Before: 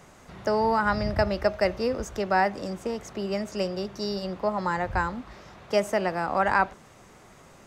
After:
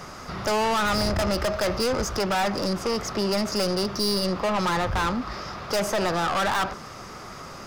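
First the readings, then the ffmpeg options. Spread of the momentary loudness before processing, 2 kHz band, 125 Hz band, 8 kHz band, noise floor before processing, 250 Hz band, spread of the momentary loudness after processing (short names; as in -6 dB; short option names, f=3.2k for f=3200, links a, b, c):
9 LU, +0.5 dB, +4.0 dB, +12.0 dB, -52 dBFS, +3.5 dB, 11 LU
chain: -filter_complex "[0:a]equalizer=f=1.25k:t=o:w=0.33:g=9,equalizer=f=5k:t=o:w=0.33:g=11,equalizer=f=8k:t=o:w=0.33:g=-6,asplit=2[a][b];[b]alimiter=limit=-17dB:level=0:latency=1,volume=-2dB[c];[a][c]amix=inputs=2:normalize=0,aeval=exprs='(tanh(22.4*val(0)+0.15)-tanh(0.15))/22.4':c=same,volume=5.5dB"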